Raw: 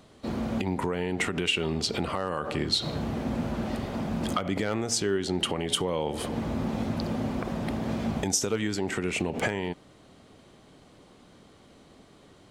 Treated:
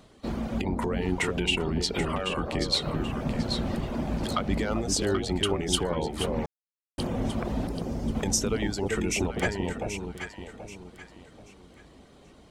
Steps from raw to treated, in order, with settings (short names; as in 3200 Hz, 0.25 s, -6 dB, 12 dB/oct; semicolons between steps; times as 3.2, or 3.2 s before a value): octaver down 2 oct, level -4 dB; reverb removal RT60 0.75 s; 7.67–8.15 elliptic band-stop 510–5000 Hz; echo with dull and thin repeats by turns 0.391 s, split 880 Hz, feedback 56%, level -2 dB; 6.46–6.98 mute